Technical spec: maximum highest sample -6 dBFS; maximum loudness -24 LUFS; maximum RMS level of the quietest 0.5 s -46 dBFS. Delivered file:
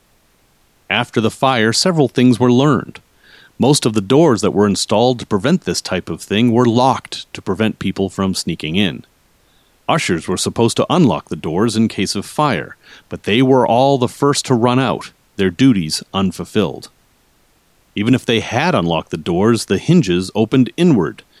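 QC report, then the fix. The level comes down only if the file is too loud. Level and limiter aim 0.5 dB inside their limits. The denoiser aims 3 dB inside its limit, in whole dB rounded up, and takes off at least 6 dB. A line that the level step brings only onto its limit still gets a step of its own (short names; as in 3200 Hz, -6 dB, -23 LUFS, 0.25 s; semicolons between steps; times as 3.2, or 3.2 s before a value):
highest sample -1.5 dBFS: fail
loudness -15.5 LUFS: fail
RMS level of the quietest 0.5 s -56 dBFS: OK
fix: gain -9 dB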